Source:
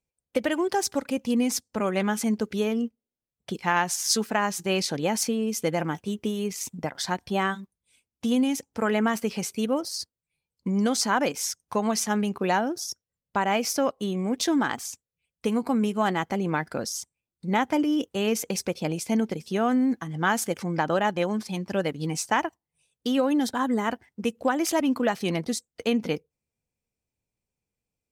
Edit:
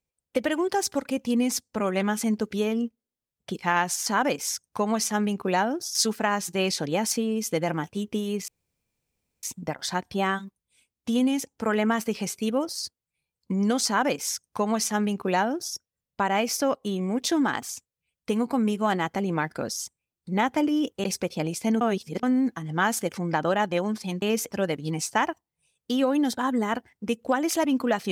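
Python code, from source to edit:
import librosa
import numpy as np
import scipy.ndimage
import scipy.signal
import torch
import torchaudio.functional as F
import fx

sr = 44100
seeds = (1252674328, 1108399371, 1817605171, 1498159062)

y = fx.edit(x, sr, fx.insert_room_tone(at_s=6.59, length_s=0.95),
    fx.duplicate(start_s=11.02, length_s=1.89, to_s=4.06),
    fx.move(start_s=18.2, length_s=0.29, to_s=21.67),
    fx.reverse_span(start_s=19.26, length_s=0.42), tone=tone)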